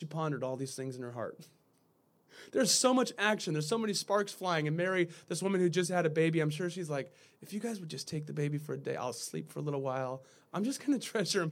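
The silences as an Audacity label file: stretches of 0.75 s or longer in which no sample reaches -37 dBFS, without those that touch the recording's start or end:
1.300000	2.550000	silence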